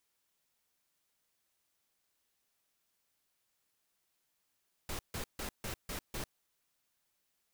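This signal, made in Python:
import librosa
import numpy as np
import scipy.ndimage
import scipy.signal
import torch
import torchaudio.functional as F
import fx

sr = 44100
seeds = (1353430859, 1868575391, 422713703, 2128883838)

y = fx.noise_burst(sr, seeds[0], colour='pink', on_s=0.1, off_s=0.15, bursts=6, level_db=-39.5)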